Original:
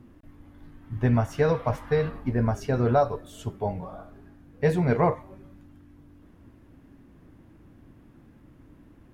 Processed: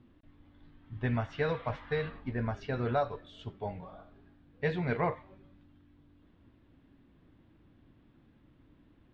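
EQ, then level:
dynamic equaliser 1,900 Hz, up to +6 dB, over −47 dBFS, Q 1.1
transistor ladder low-pass 4,300 Hz, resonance 50%
0.0 dB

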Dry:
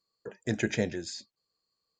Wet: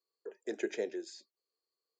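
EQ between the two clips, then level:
four-pole ladder high-pass 340 Hz, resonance 60%
0.0 dB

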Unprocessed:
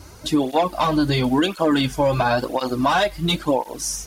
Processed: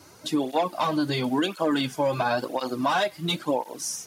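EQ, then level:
Bessel high-pass filter 160 Hz, order 8
−5.0 dB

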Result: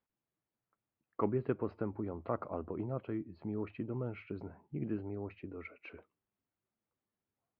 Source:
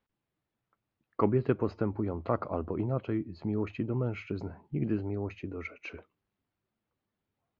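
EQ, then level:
Gaussian smoothing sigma 2.4 samples
low-shelf EQ 120 Hz −6 dB
−5.5 dB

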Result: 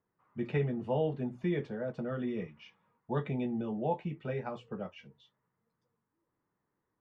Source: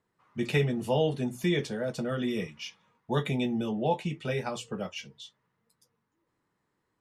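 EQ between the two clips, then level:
low-pass filter 1,700 Hz 12 dB per octave
−4.5 dB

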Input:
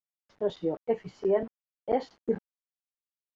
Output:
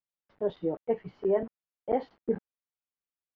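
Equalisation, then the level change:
high-frequency loss of the air 300 metres
0.0 dB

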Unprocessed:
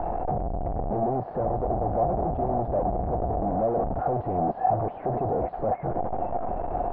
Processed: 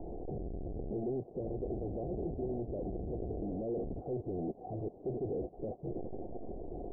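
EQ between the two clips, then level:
transistor ladder low-pass 460 Hz, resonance 50%
high-frequency loss of the air 390 metres
−1.5 dB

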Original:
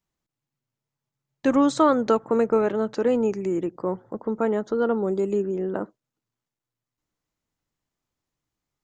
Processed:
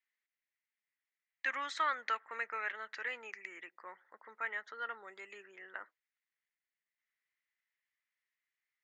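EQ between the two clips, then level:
four-pole ladder band-pass 2,100 Hz, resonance 70%
+7.5 dB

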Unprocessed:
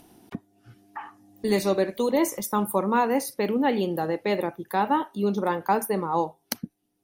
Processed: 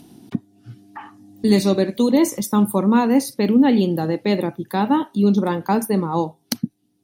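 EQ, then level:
octave-band graphic EQ 125/250/4,000/8,000 Hz +11/+10/+7/+4 dB
0.0 dB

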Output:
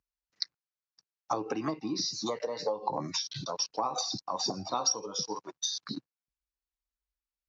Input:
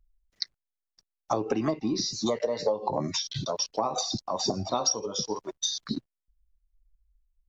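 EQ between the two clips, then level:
loudspeaker in its box 190–6,100 Hz, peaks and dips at 230 Hz −8 dB, 390 Hz −8 dB, 620 Hz −9 dB, 2,000 Hz −4 dB, 3,300 Hz −7 dB
0.0 dB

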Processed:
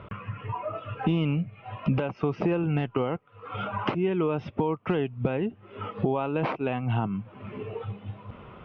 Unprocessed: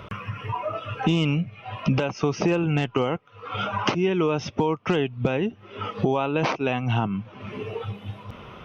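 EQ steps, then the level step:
high-frequency loss of the air 400 metres
−2.5 dB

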